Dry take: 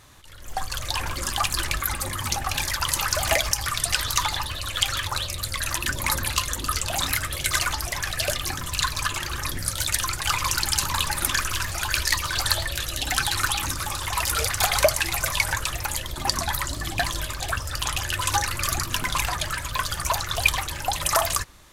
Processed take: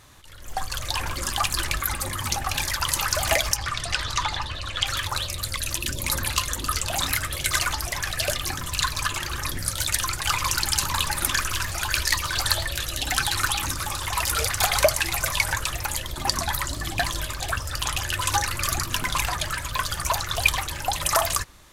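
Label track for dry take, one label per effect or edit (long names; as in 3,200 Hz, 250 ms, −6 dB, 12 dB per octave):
3.560000	4.870000	high-frequency loss of the air 81 metres
5.560000	6.130000	flat-topped bell 1,200 Hz −9.5 dB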